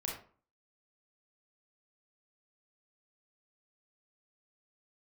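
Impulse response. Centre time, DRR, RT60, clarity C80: 36 ms, −2.5 dB, 0.45 s, 9.5 dB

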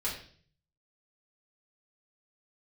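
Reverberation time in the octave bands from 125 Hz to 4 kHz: 0.90, 0.65, 0.55, 0.45, 0.50, 0.50 seconds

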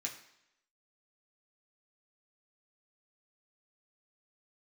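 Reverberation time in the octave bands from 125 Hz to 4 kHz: 0.70, 0.75, 0.75, 0.80, 0.85, 0.80 seconds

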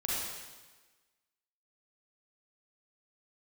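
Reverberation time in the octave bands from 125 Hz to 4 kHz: 1.2, 1.3, 1.3, 1.3, 1.3, 1.2 seconds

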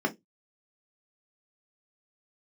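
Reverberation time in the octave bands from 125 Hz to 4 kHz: 0.25, 0.20, 0.20, 0.15, 0.15, 0.15 seconds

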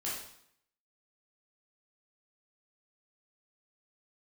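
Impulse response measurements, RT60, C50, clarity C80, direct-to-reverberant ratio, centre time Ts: 0.70 s, 1.5 dB, 5.5 dB, −7.0 dB, 54 ms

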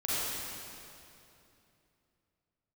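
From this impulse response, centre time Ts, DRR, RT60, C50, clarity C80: 205 ms, −10.0 dB, 2.8 s, −7.5 dB, −4.0 dB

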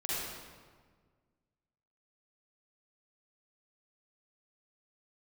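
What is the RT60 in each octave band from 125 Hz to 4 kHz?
2.1, 2.0, 1.7, 1.5, 1.3, 1.1 seconds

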